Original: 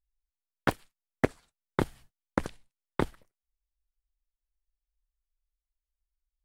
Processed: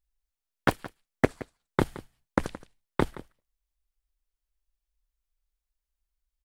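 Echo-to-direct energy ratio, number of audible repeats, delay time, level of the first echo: −17.5 dB, 1, 171 ms, −17.5 dB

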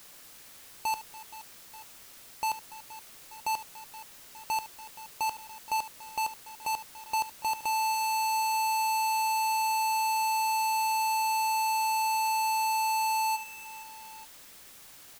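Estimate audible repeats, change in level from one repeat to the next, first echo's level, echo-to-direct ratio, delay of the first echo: 4, repeats not evenly spaced, −14.5 dB, −10.5 dB, 73 ms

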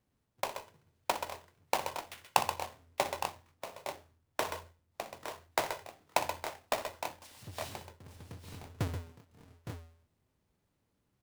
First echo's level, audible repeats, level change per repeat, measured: −13.0 dB, 3, repeats not evenly spaced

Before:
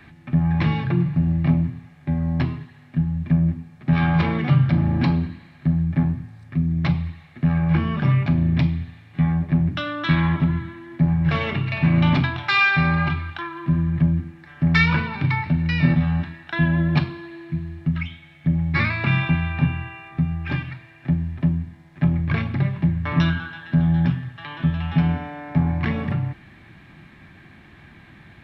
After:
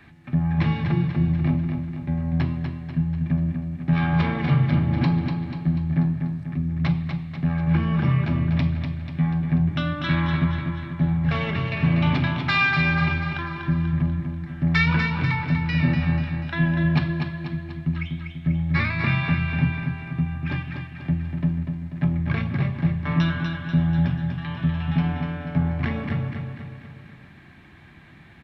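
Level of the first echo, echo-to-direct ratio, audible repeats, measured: −6.0 dB, −4.5 dB, 5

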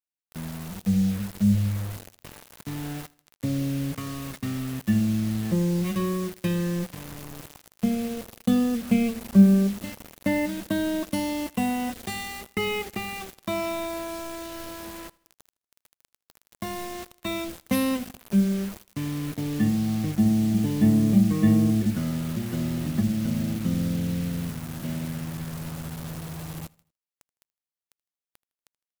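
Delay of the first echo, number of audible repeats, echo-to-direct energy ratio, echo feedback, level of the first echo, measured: 79 ms, 2, −23.0 dB, 42%, −24.0 dB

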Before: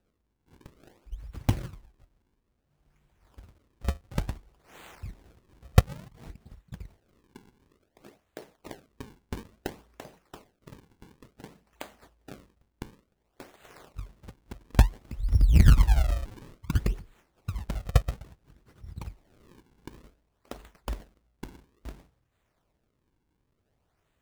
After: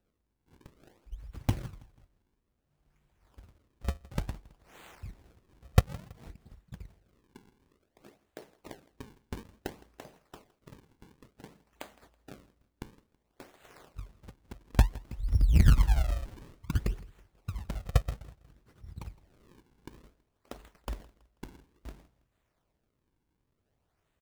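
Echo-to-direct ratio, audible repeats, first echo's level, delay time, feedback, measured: −21.0 dB, 2, −21.5 dB, 163 ms, 38%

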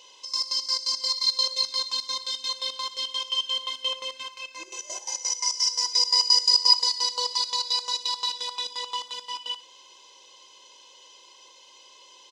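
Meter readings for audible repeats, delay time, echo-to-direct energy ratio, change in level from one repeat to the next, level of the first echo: 2, 61 ms, −15.5 dB, −8.5 dB, −16.0 dB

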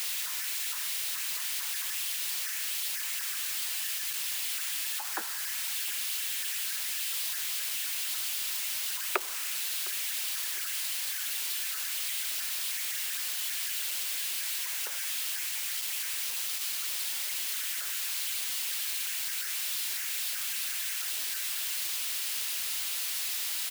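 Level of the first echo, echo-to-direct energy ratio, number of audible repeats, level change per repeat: −20.5 dB, −19.5 dB, 2, −7.5 dB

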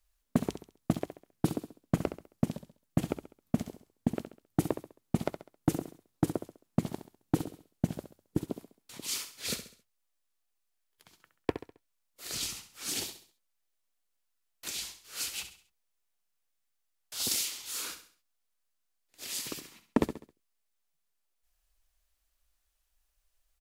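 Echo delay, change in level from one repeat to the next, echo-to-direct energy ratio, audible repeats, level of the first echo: 67 ms, −8.0 dB, −10.0 dB, 3, −10.5 dB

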